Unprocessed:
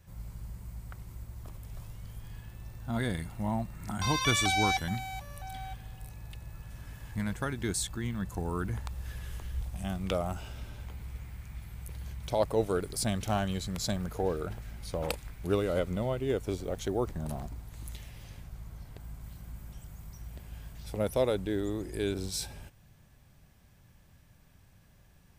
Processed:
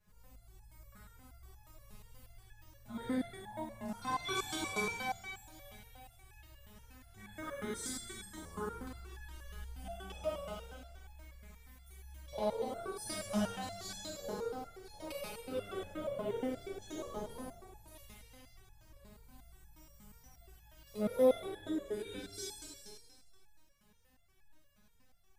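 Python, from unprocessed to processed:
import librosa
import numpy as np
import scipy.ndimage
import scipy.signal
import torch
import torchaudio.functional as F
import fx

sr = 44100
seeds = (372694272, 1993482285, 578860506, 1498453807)

y = fx.rev_schroeder(x, sr, rt60_s=1.8, comb_ms=31, drr_db=-6.0)
y = fx.resonator_held(y, sr, hz=8.4, low_hz=210.0, high_hz=840.0)
y = y * 10.0 ** (2.0 / 20.0)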